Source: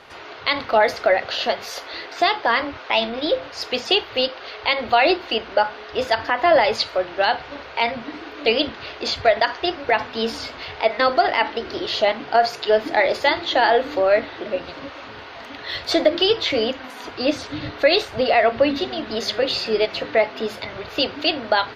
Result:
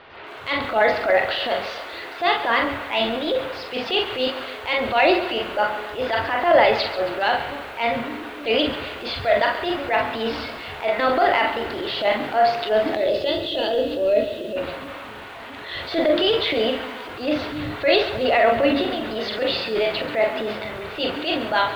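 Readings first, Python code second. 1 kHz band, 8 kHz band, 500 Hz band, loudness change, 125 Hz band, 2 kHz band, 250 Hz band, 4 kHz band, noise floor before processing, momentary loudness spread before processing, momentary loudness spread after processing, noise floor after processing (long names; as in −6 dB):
−1.0 dB, can't be measured, −1.0 dB, −1.0 dB, +2.0 dB, −0.5 dB, +1.0 dB, −2.5 dB, −38 dBFS, 12 LU, 12 LU, −36 dBFS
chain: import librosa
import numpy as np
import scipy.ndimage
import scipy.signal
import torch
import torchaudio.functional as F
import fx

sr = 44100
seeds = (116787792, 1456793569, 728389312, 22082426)

p1 = scipy.signal.sosfilt(scipy.signal.butter(4, 3700.0, 'lowpass', fs=sr, output='sos'), x)
p2 = p1 + fx.room_early_taps(p1, sr, ms=(23, 43, 63), db=(-16.5, -8.5, -16.5), dry=0)
p3 = fx.spec_box(p2, sr, start_s=12.95, length_s=1.62, low_hz=680.0, high_hz=2500.0, gain_db=-16)
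p4 = fx.transient(p3, sr, attack_db=-9, sustain_db=4)
y = fx.echo_crushed(p4, sr, ms=137, feedback_pct=55, bits=7, wet_db=-12.5)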